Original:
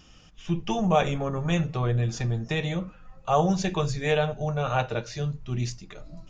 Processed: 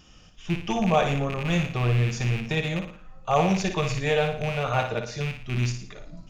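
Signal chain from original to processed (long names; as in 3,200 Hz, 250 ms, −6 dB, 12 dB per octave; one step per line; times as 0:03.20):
loose part that buzzes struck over −28 dBFS, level −23 dBFS
flutter between parallel walls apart 9.8 metres, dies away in 0.48 s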